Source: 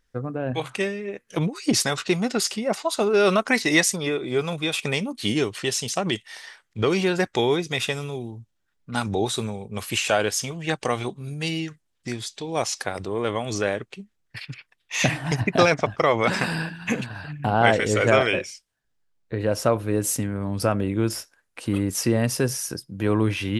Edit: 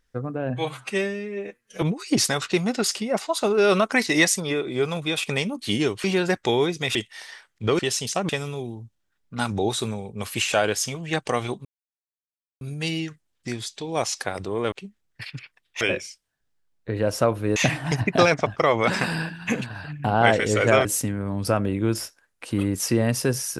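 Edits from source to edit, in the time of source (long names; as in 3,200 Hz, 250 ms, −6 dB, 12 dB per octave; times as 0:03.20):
0:00.50–0:01.38: time-stretch 1.5×
0:05.60–0:06.10: swap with 0:06.94–0:07.85
0:11.21: splice in silence 0.96 s
0:13.32–0:13.87: remove
0:18.25–0:20.00: move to 0:14.96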